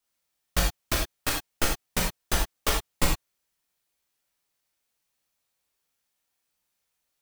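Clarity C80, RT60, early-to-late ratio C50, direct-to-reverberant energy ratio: 9.0 dB, not exponential, 4.0 dB, -2.5 dB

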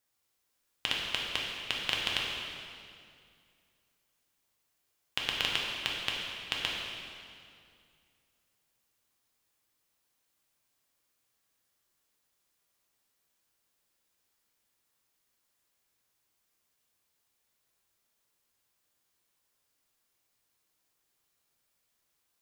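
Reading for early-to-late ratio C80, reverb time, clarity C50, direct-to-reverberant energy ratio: 1.5 dB, 2.3 s, 0.0 dB, -3.0 dB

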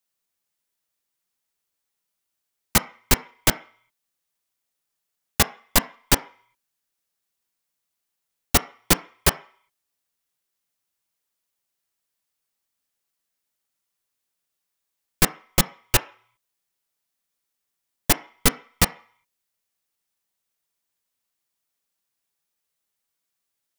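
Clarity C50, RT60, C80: 18.5 dB, 0.50 s, 22.0 dB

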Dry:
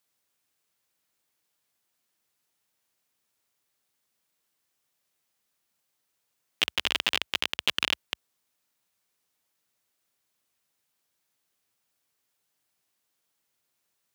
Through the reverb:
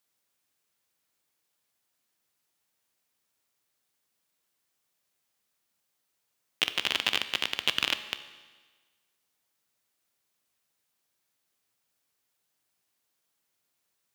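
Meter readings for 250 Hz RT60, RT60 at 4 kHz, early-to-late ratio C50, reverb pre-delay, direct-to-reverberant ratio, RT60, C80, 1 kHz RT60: 1.4 s, 1.4 s, 13.0 dB, 14 ms, 11.0 dB, 1.4 s, 14.0 dB, 1.4 s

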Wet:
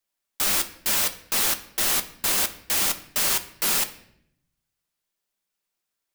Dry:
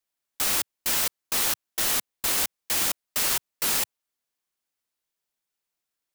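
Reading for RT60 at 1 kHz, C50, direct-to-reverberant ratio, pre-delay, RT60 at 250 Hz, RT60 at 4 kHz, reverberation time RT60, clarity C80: 0.65 s, 14.0 dB, 7.0 dB, 5 ms, 1.1 s, 0.60 s, 0.70 s, 17.5 dB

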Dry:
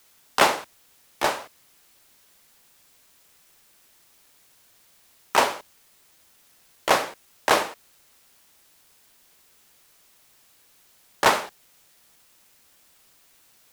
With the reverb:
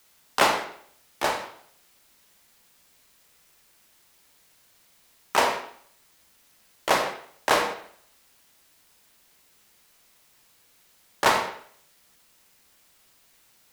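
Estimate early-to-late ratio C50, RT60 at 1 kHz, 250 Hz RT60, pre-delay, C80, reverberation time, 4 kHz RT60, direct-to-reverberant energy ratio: 7.5 dB, 0.60 s, 0.60 s, 29 ms, 10.0 dB, 0.60 s, 0.55 s, 4.5 dB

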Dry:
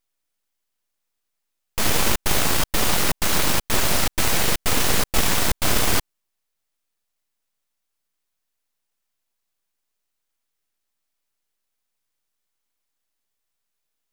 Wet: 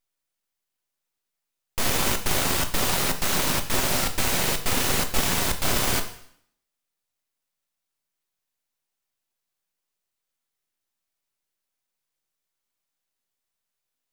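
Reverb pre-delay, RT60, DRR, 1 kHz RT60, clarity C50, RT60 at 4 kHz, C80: 4 ms, 0.65 s, 6.0 dB, 0.65 s, 11.5 dB, 0.65 s, 14.5 dB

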